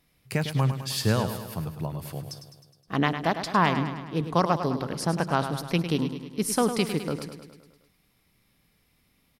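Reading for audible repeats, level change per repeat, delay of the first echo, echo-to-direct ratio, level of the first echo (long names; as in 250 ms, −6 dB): 6, −4.5 dB, 104 ms, −7.5 dB, −9.5 dB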